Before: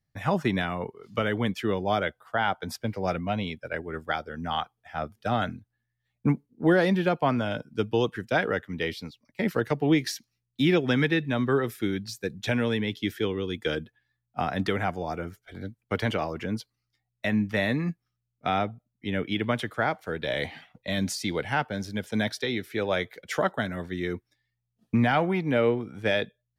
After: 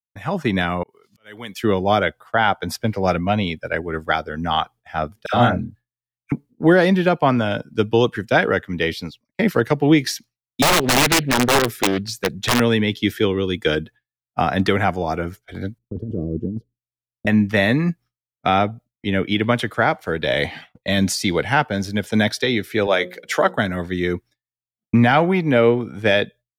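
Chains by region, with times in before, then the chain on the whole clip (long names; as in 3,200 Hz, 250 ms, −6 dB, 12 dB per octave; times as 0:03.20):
0:00.83–0:01.64: spectral tilt +3 dB per octave + downward compressor 2 to 1, threshold −46 dBFS + volume swells 293 ms
0:05.26–0:06.32: double-tracking delay 33 ms −2 dB + all-pass dispersion lows, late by 81 ms, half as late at 1,200 Hz
0:10.62–0:12.60: wrap-around overflow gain 18.5 dB + highs frequency-modulated by the lows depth 0.59 ms
0:15.78–0:17.27: inverse Chebyshev low-pass filter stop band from 790 Hz + compressor whose output falls as the input rises −34 dBFS
0:22.87–0:23.56: high-pass filter 230 Hz + mains-hum notches 60/120/180/240/300/360/420/480/540 Hz
whole clip: downward expander −45 dBFS; automatic gain control gain up to 9.5 dB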